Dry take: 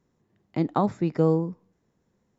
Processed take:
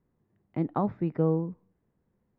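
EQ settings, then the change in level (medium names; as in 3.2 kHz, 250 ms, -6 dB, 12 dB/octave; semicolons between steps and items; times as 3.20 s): low-pass 2.8 kHz 12 dB/octave; distance through air 220 m; bass shelf 100 Hz +6.5 dB; -4.5 dB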